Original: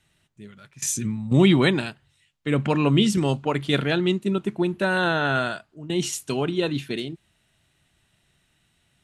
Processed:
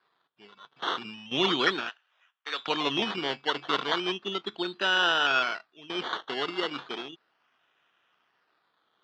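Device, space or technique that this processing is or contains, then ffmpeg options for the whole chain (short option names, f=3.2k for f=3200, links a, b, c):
circuit-bent sampling toy: -filter_complex "[0:a]acrusher=samples=14:mix=1:aa=0.000001:lfo=1:lforange=8.4:lforate=0.35,highpass=570,equalizer=f=590:t=q:w=4:g=-7,equalizer=f=860:t=q:w=4:g=-3,equalizer=f=1.3k:t=q:w=4:g=3,equalizer=f=2.1k:t=q:w=4:g=-5,equalizer=f=3.3k:t=q:w=4:g=8,lowpass=f=4.2k:w=0.5412,lowpass=f=4.2k:w=1.3066,asettb=1/sr,asplit=3[a][b][c];[a]atrim=end=1.894[d];[b]atrim=start=1.89:end=2.68,asetpts=PTS-STARTPTS,afade=t=in:d=0.004:c=qsin,afade=t=out:st=0.786:d=0.004:c=qsin,highpass=770[e];[c]atrim=start=2.676[f];[d][e]acrossfade=d=0.004:c1=hsin:c2=qsin[g];[g][f]acrossfade=d=0.004:c1=qsin:c2=hsin"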